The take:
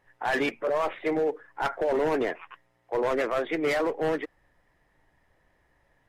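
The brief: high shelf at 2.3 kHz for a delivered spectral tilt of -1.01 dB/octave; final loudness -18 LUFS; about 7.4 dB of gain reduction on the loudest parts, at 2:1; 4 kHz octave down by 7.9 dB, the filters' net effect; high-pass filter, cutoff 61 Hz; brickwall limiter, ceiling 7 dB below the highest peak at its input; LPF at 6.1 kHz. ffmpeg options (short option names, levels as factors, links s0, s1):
-af "highpass=61,lowpass=6100,highshelf=f=2300:g=-4.5,equalizer=f=4000:t=o:g=-6.5,acompressor=threshold=0.0141:ratio=2,volume=11.9,alimiter=limit=0.335:level=0:latency=1"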